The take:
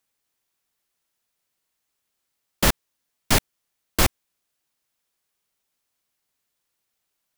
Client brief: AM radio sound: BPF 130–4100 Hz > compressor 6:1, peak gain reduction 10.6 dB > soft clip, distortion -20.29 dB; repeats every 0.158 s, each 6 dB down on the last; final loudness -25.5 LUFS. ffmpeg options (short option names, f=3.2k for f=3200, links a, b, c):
-af "highpass=130,lowpass=4.1k,aecho=1:1:158|316|474|632|790|948:0.501|0.251|0.125|0.0626|0.0313|0.0157,acompressor=threshold=-28dB:ratio=6,asoftclip=threshold=-20dB,volume=10dB"